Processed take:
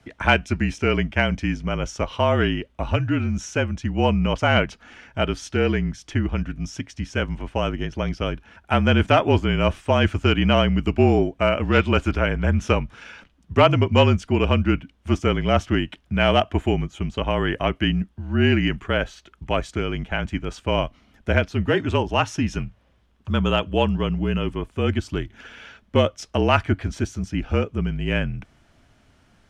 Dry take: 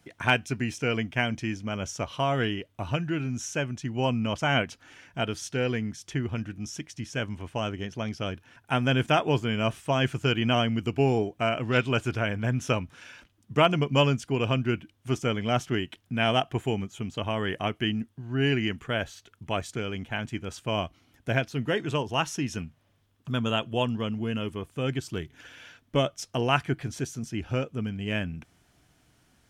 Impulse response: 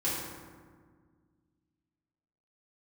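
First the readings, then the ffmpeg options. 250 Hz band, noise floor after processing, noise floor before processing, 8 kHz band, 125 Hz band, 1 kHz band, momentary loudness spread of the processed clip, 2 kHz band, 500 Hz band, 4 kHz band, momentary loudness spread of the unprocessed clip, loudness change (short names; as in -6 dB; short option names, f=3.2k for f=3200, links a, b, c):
+6.5 dB, -60 dBFS, -67 dBFS, -0.5 dB, +6.5 dB, +5.5 dB, 10 LU, +5.0 dB, +6.5 dB, +3.5 dB, 10 LU, +6.0 dB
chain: -af "afreqshift=-39,acontrast=77,aemphasis=mode=reproduction:type=50fm"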